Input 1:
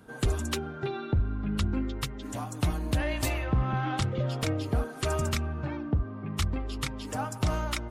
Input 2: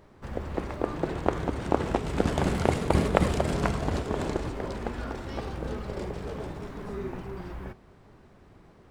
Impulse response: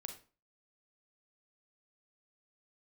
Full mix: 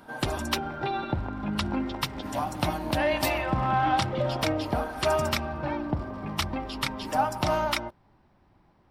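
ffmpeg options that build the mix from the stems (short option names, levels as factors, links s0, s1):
-filter_complex "[0:a]highpass=f=280:p=1,equalizer=f=610:t=o:w=0.34:g=5,acontrast=75,volume=0.841[s0];[1:a]acompressor=threshold=0.0355:ratio=4,volume=0.398[s1];[s0][s1]amix=inputs=2:normalize=0,superequalizer=7b=0.501:9b=1.78:15b=0.398:16b=0.562"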